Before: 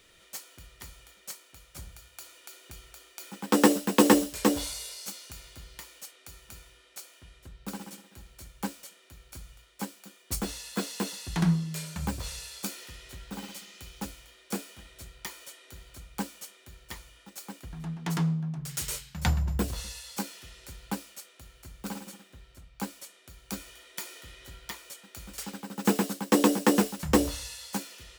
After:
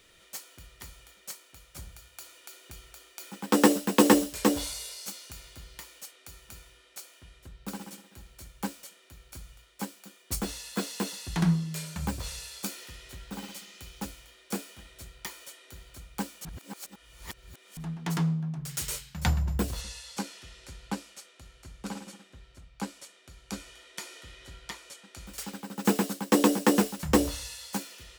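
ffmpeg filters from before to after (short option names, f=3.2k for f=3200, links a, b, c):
-filter_complex "[0:a]asettb=1/sr,asplit=3[a][b][c];[a]atrim=end=19.814[d];[b]atrim=start=19.81:end=25.27,asetpts=PTS-STARTPTS,afade=t=in:d=0.004:c=qsin,afade=t=out:st=5.456:d=0.004:c=qsin,lowpass=9k[e];[c]atrim=start=25.266[f];[d][e]acrossfade=d=0.004:c1=hsin:c2=qsin[g];[g][f]acrossfade=d=0.004:c1=qsin:c2=hsin,asplit=3[h][i][j];[h]atrim=end=16.452[k];[i]atrim=start=16.448:end=17.772,asetpts=PTS-STARTPTS,areverse[l];[j]atrim=start=17.768[m];[k][l]acrossfade=d=0.004:c1=hsin:c2=hsin[n];[n][m]acrossfade=d=0.004:c1=hsin:c2=hsin"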